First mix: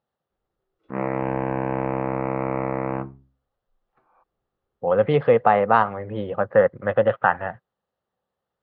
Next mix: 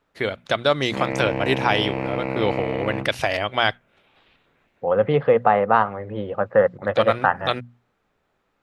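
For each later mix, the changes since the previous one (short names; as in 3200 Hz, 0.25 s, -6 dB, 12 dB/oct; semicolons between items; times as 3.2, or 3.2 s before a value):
first voice: unmuted; background: remove synth low-pass 1300 Hz, resonance Q 2; master: add notches 60/120/180/240 Hz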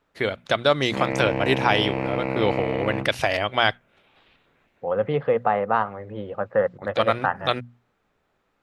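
second voice -4.5 dB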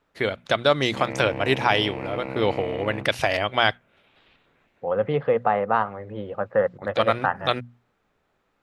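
background -6.5 dB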